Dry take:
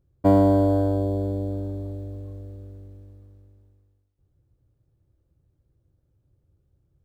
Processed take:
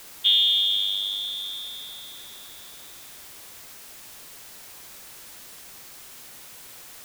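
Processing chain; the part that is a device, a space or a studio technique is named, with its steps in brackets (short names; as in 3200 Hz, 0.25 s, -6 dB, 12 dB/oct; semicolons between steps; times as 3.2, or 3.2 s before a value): scrambled radio voice (BPF 310–3000 Hz; inverted band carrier 3900 Hz; white noise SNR 14 dB)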